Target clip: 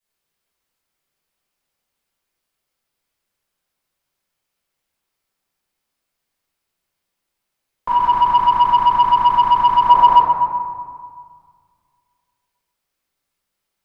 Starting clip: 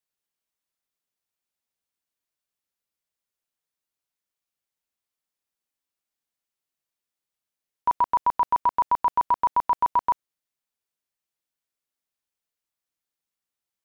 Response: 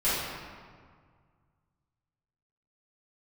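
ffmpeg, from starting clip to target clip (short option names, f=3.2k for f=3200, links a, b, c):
-filter_complex "[1:a]atrim=start_sample=2205[a];[0:a][a]afir=irnorm=-1:irlink=0,asoftclip=type=tanh:threshold=-1dB,asettb=1/sr,asplit=3[b][c][d];[b]atrim=end=7.884[e];[c]atrim=start=7.88:end=9.89,asetpts=PTS-STARTPTS,afade=t=in:d=0.004:c=qsin,afade=t=out:st=2.006:d=0.004:c=qsin,equalizer=f=580:w=1.3:g=-10.5[f];[d]atrim=start=9.886[g];[e][f]acrossfade=d=0.004:c1=hsin:c2=qsin[h];[h][g]acrossfade=d=0.004:c1=qsin:c2=hsin"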